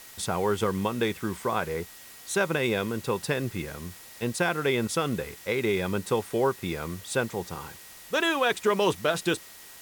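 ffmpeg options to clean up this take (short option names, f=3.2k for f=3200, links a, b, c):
-af "bandreject=f=1.9k:w=30,afwtdn=0.0045"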